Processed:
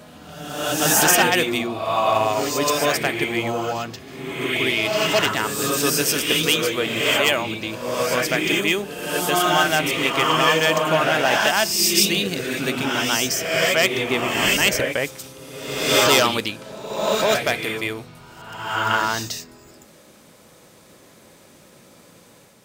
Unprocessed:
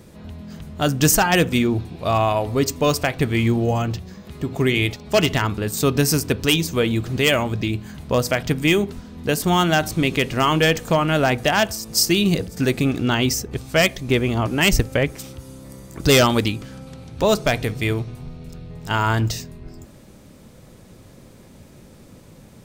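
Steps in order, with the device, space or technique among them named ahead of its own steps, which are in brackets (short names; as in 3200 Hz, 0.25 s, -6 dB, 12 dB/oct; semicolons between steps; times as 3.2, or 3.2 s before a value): ghost voice (reverse; reverb RT60 1.2 s, pre-delay 0.114 s, DRR -1.5 dB; reverse; HPF 650 Hz 6 dB/oct)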